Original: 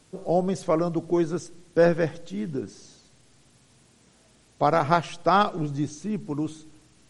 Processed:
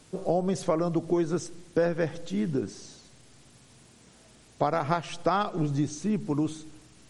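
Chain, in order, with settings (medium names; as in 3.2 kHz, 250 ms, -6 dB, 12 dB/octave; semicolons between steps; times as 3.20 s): compression 6:1, threshold -25 dBFS, peak gain reduction 11 dB; trim +3 dB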